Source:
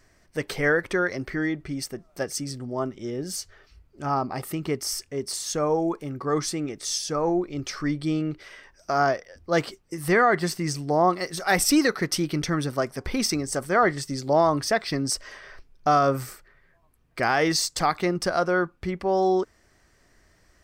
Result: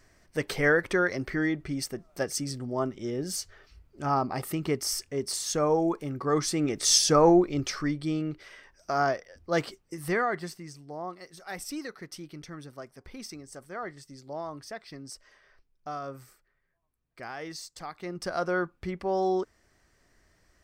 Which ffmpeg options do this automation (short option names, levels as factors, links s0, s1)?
-af "volume=9.44,afade=t=in:st=6.48:d=0.49:silence=0.375837,afade=t=out:st=6.97:d=0.97:silence=0.266073,afade=t=out:st=9.79:d=0.9:silence=0.223872,afade=t=in:st=17.96:d=0.53:silence=0.251189"